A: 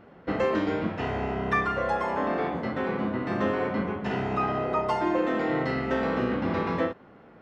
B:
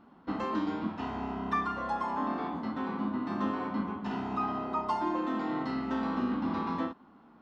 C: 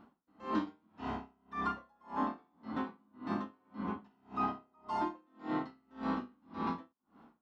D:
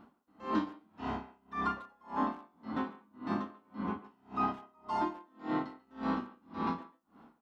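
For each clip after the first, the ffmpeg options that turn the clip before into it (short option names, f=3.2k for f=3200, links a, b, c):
-af "equalizer=f=125:t=o:w=1:g=-8,equalizer=f=250:t=o:w=1:g=11,equalizer=f=500:t=o:w=1:g=-11,equalizer=f=1k:t=o:w=1:g=10,equalizer=f=2k:t=o:w=1:g=-7,equalizer=f=4k:t=o:w=1:g=5,volume=-8dB"
-af "aeval=exprs='val(0)*pow(10,-38*(0.5-0.5*cos(2*PI*1.8*n/s))/20)':c=same"
-filter_complex "[0:a]asplit=2[a][b];[b]adelay=140,highpass=300,lowpass=3.4k,asoftclip=type=hard:threshold=-29.5dB,volume=-17dB[c];[a][c]amix=inputs=2:normalize=0,volume=2dB"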